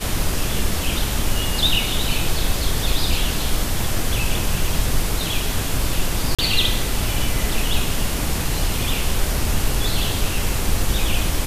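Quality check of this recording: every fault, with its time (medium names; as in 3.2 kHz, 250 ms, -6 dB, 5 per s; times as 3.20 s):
6.35–6.39 s: dropout 36 ms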